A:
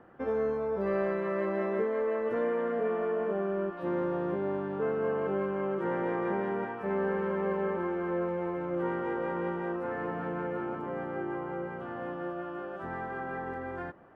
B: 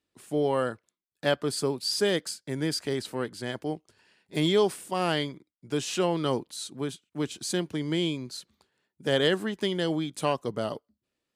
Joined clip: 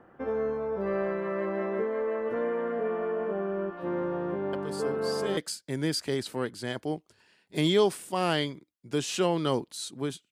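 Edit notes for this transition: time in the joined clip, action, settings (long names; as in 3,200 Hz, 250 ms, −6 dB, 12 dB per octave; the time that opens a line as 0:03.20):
A
0:04.53: mix in B from 0:01.32 0.84 s −10.5 dB
0:05.37: continue with B from 0:02.16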